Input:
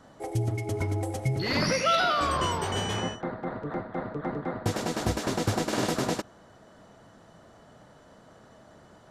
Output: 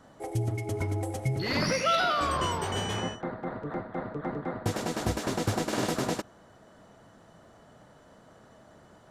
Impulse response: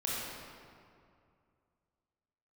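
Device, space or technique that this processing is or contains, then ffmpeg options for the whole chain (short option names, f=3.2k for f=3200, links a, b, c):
exciter from parts: -filter_complex "[0:a]asplit=2[a][b];[b]highpass=3.8k,asoftclip=type=tanh:threshold=-38.5dB,highpass=4.3k,volume=-11dB[c];[a][c]amix=inputs=2:normalize=0,volume=-1.5dB"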